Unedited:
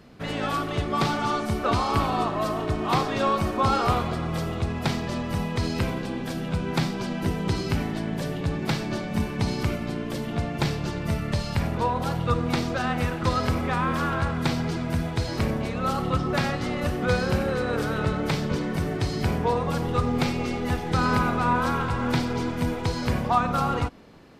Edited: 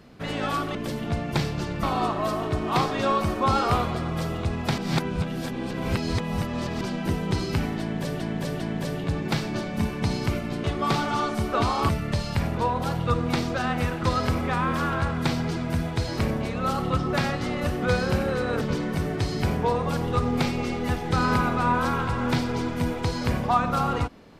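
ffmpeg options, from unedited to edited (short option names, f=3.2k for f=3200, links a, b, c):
-filter_complex "[0:a]asplit=10[a][b][c][d][e][f][g][h][i][j];[a]atrim=end=0.752[k];[b]atrim=start=10.008:end=11.092[l];[c]atrim=start=1.998:end=4.952[m];[d]atrim=start=4.948:end=6.982,asetpts=PTS-STARTPTS,areverse[n];[e]atrim=start=6.978:end=8.372[o];[f]atrim=start=7.968:end=8.372[p];[g]atrim=start=7.968:end=10.012[q];[h]atrim=start=0.748:end=2.002[r];[i]atrim=start=11.088:end=17.812[s];[j]atrim=start=18.418[t];[k][l]acrossfade=d=0.004:c1=hsin:c2=hsin[u];[u][m]acrossfade=d=0.004:c1=hsin:c2=hsin[v];[v][n]acrossfade=d=0.004:c1=hsin:c2=hsin[w];[w][o]acrossfade=d=0.004:c1=hsin:c2=hsin[x];[x][p]acrossfade=d=0.004:c1=hsin:c2=hsin[y];[y][q]acrossfade=d=0.004:c1=hsin:c2=hsin[z];[z][r]acrossfade=d=0.004:c1=hsin:c2=hsin[aa];[aa][s]acrossfade=d=0.004:c1=hsin:c2=hsin[ab];[ab][t]acrossfade=d=0.004:c1=hsin:c2=hsin"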